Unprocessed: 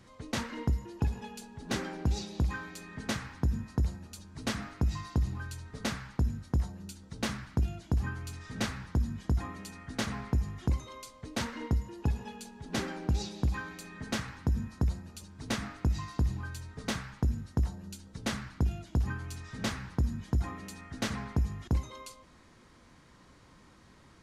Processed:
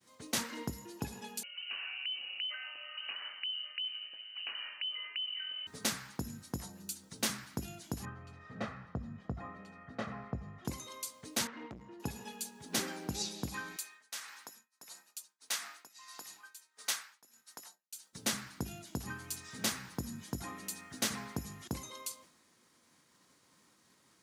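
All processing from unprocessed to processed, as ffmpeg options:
-filter_complex "[0:a]asettb=1/sr,asplit=3[s0][s1][s2];[s0]atrim=end=1.434[s3];[s1]atrim=start=1.43:end=5.67,asetpts=PTS-STARTPTS,afade=t=in:d=0.004:c=qsin,afade=t=out:st=4.236:d=0.004:c=qsin,equalizer=f=620:w=3.6:g=6,acompressor=threshold=0.0126:ratio=4:attack=3.2:release=140:knee=1:detection=peak,lowpass=f=2600:t=q:w=0.5098,lowpass=f=2600:t=q:w=0.6013,lowpass=f=2600:t=q:w=0.9,lowpass=f=2600:t=q:w=2.563,afreqshift=-3100[s4];[s2]atrim=start=5.666[s5];[s3][s4]acrossfade=d=0.004:c1=hsin:c2=qsin[s6];[s6][s5]acrossfade=d=0.004:c1=qsin:c2=hsin,asettb=1/sr,asplit=3[s7][s8][s9];[s7]atrim=end=8.054[s10];[s8]atrim=start=8.05:end=10.65,asetpts=PTS-STARTPTS,afade=t=in:d=0.004:c=qsin,afade=t=out:st=2.596:d=0.004:c=qsin,lowpass=1400,aecho=1:1:1.6:0.49,atrim=end_sample=114660[s11];[s9]atrim=start=10.646[s12];[s10][s11]acrossfade=d=0.004:c1=hsin:c2=qsin[s13];[s13][s12]acrossfade=d=0.004:c1=qsin:c2=hsin,asettb=1/sr,asplit=3[s14][s15][s16];[s14]atrim=end=11.474[s17];[s15]atrim=start=11.47:end=12,asetpts=PTS-STARTPTS,afade=t=in:d=0.004:c=qsin,afade=t=out:st=0.526:d=0.004:c=qsin,lowpass=2100,equalizer=f=530:w=6.8:g=-5,aeval=exprs='(tanh(50.1*val(0)+0.4)-tanh(0.4))/50.1':c=same[s18];[s16]atrim=start=11.996[s19];[s17][s18]acrossfade=d=0.004:c1=hsin:c2=qsin[s20];[s20][s19]acrossfade=d=0.004:c1=qsin:c2=hsin,asettb=1/sr,asplit=3[s21][s22][s23];[s21]atrim=end=13.764[s24];[s22]atrim=start=13.76:end=18.13,asetpts=PTS-STARTPTS,afade=t=in:d=0.004:c=qsin,afade=t=out:st=4.366:d=0.004:c=qsin,highpass=900,tremolo=f=1.6:d=0.73[s25];[s23]atrim=start=18.126[s26];[s24][s25]acrossfade=d=0.004:c1=hsin:c2=qsin[s27];[s27][s26]acrossfade=d=0.004:c1=qsin:c2=hsin,aemphasis=mode=production:type=75fm,agate=range=0.0224:threshold=0.00316:ratio=3:detection=peak,highpass=170,volume=0.708"

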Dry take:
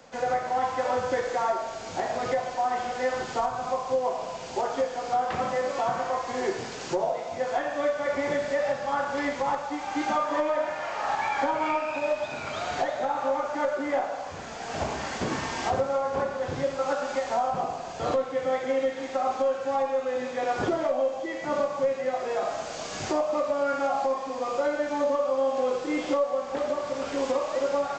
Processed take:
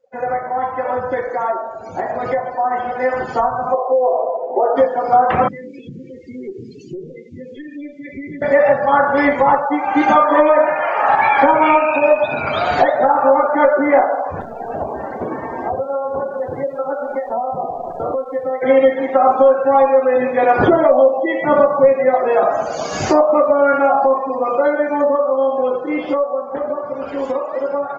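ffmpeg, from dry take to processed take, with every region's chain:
-filter_complex "[0:a]asettb=1/sr,asplit=3[s0][s1][s2];[s0]atrim=end=3.744[s3];[s1]atrim=start=3.74:end=4.76,asetpts=PTS-STARTPTS,afade=t=in:d=0.004:c=qsin,afade=t=out:st=1.016:d=0.004:c=qsin,highpass=290,equalizer=f=480:t=q:w=4:g=6,equalizer=f=690:t=q:w=4:g=4,equalizer=f=1000:t=q:w=4:g=-5,equalizer=f=1500:t=q:w=4:g=-4,lowpass=f=2100:w=0.5412,lowpass=f=2100:w=1.3066,acompressor=threshold=0.0708:ratio=4:attack=3.2:release=140:knee=1:detection=peak[s4];[s2]atrim=start=4.756[s5];[s3][s4]acrossfade=d=0.004:c1=hsin:c2=qsin[s6];[s6][s5]acrossfade=d=0.004:c1=qsin:c2=hsin,asettb=1/sr,asplit=3[s7][s8][s9];[s7]atrim=end=5.484[s10];[s8]atrim=start=5.48:end=8.42,asetpts=PTS-STARTPTS,afade=t=in:d=0.004:c=qsin,afade=t=out:st=2.936:d=0.004:c=qsin,asuperstop=centerf=920:order=8:qfactor=0.53,acompressor=threshold=0.01:ratio=3:attack=3.2:release=140:knee=1:detection=peak,aeval=exprs='(tanh(31.6*val(0)+0.35)-tanh(0.35))/31.6':c=same[s11];[s9]atrim=start=8.416[s12];[s10][s11]acrossfade=d=0.004:c1=hsin:c2=qsin[s13];[s13][s12]acrossfade=d=0.004:c1=qsin:c2=hsin,asettb=1/sr,asplit=3[s14][s15][s16];[s14]atrim=end=14.414[s17];[s15]atrim=start=14.41:end=18.62,asetpts=PTS-STARTPTS,afade=t=in:d=0.004:c=qsin,afade=t=out:st=4.206:d=0.004:c=qsin,acrusher=bits=7:dc=4:mix=0:aa=0.000001,acrossover=split=330|680[s18][s19][s20];[s18]acompressor=threshold=0.00355:ratio=4[s21];[s19]acompressor=threshold=0.0126:ratio=4[s22];[s20]acompressor=threshold=0.00708:ratio=4[s23];[s21][s22][s23]amix=inputs=3:normalize=0[s24];[s16]atrim=start=18.616[s25];[s17][s24]acrossfade=d=0.004:c1=hsin:c2=qsin[s26];[s26][s25]acrossfade=d=0.004:c1=qsin:c2=hsin,afftdn=nr=33:nf=-39,dynaudnorm=f=360:g=21:m=2.66,volume=2"

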